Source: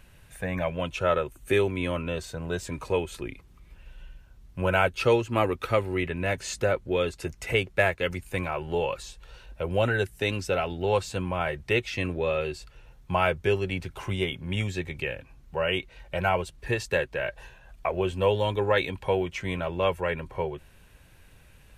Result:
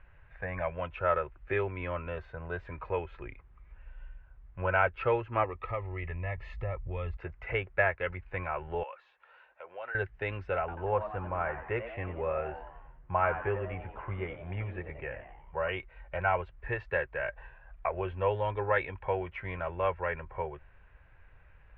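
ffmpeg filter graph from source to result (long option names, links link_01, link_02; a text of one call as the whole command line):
ffmpeg -i in.wav -filter_complex "[0:a]asettb=1/sr,asplit=3[link_01][link_02][link_03];[link_01]atrim=end=5.444[link_04];[link_02]atrim=start=5.44:end=7.17,asetpts=PTS-STARTPTS,afade=type=in:duration=0.004:curve=qsin,afade=type=out:start_time=1.726:duration=0.004:curve=qsin,asubboost=boost=10:cutoff=150,acompressor=threshold=-29dB:ratio=2:attack=3.2:release=140:knee=1:detection=peak,asuperstop=centerf=1500:order=8:qfactor=4.7[link_05];[link_03]atrim=start=7.166[link_06];[link_04][link_05]acrossfade=duration=0.004:curve1=hsin:curve2=qsin[link_07];[link_07][link_06]acrossfade=duration=0.004:curve1=qsin:curve2=hsin,asettb=1/sr,asplit=3[link_08][link_09][link_10];[link_08]atrim=end=8.834[link_11];[link_09]atrim=start=8.83:end=9.95,asetpts=PTS-STARTPTS,afade=type=in:duration=0.004:curve=qsin,afade=type=out:start_time=1.116:duration=0.004:curve=qsin,highpass=610,acompressor=threshold=-48dB:ratio=1.5:attack=3.2:release=140:knee=1:detection=peak[link_12];[link_10]atrim=start=9.946[link_13];[link_11][link_12]acrossfade=duration=0.004:curve1=hsin:curve2=qsin[link_14];[link_14][link_13]acrossfade=duration=0.004:curve1=qsin:curve2=hsin,asettb=1/sr,asplit=3[link_15][link_16][link_17];[link_15]atrim=end=10.594[link_18];[link_16]atrim=start=10.59:end=15.69,asetpts=PTS-STARTPTS,afade=type=in:duration=0.004:curve=qsin,afade=type=out:start_time=5.096:duration=0.004:curve=qsin,lowpass=1900,asplit=6[link_19][link_20][link_21][link_22][link_23][link_24];[link_20]adelay=90,afreqshift=110,volume=-11dB[link_25];[link_21]adelay=180,afreqshift=220,volume=-16.8dB[link_26];[link_22]adelay=270,afreqshift=330,volume=-22.7dB[link_27];[link_23]adelay=360,afreqshift=440,volume=-28.5dB[link_28];[link_24]adelay=450,afreqshift=550,volume=-34.4dB[link_29];[link_19][link_25][link_26][link_27][link_28][link_29]amix=inputs=6:normalize=0,atrim=end_sample=224910[link_30];[link_17]atrim=start=15.686[link_31];[link_18][link_30]acrossfade=duration=0.004:curve1=hsin:curve2=qsin[link_32];[link_32][link_31]acrossfade=duration=0.004:curve1=qsin:curve2=hsin,lowpass=frequency=2000:width=0.5412,lowpass=frequency=2000:width=1.3066,equalizer=frequency=230:width=0.72:gain=-14.5" out.wav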